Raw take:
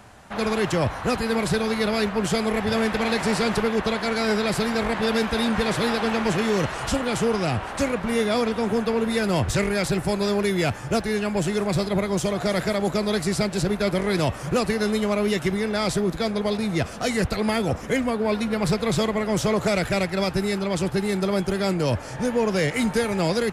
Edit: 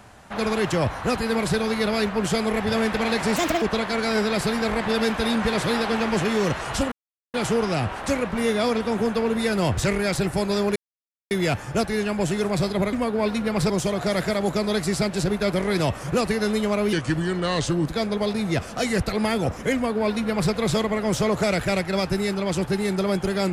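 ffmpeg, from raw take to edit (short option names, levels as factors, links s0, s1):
-filter_complex "[0:a]asplit=9[s0][s1][s2][s3][s4][s5][s6][s7][s8];[s0]atrim=end=3.364[s9];[s1]atrim=start=3.36:end=3.75,asetpts=PTS-STARTPTS,asetrate=66591,aresample=44100,atrim=end_sample=11390,asetpts=PTS-STARTPTS[s10];[s2]atrim=start=3.746:end=7.05,asetpts=PTS-STARTPTS,afade=t=out:st=3.3:d=0.004:c=hsin,apad=pad_dur=0.42[s11];[s3]atrim=start=7.05:end=10.47,asetpts=PTS-STARTPTS,afade=t=in:d=0.004:c=hsin,afade=t=out:st=3.416:d=0.004:c=hsin,apad=pad_dur=0.55[s12];[s4]atrim=start=10.47:end=12.092,asetpts=PTS-STARTPTS,afade=t=in:d=0.004:c=hsin[s13];[s5]atrim=start=17.988:end=18.762[s14];[s6]atrim=start=12.088:end=15.324[s15];[s7]atrim=start=15.32:end=16.11,asetpts=PTS-STARTPTS,asetrate=37044,aresample=44100[s16];[s8]atrim=start=16.106[s17];[s9][s10]acrossfade=d=0.004:c1=hsin:c2=hsin[s18];[s11][s12][s13]concat=n=3:v=0:a=1[s19];[s18][s19]acrossfade=d=0.004:c1=hsin:c2=hsin[s20];[s20][s14]acrossfade=d=0.004:c1=hsin:c2=hsin[s21];[s21][s15]acrossfade=d=0.004:c1=hsin:c2=hsin[s22];[s22][s16]acrossfade=d=0.004:c1=hsin:c2=hsin[s23];[s23][s17]acrossfade=d=0.004:c1=hsin:c2=hsin"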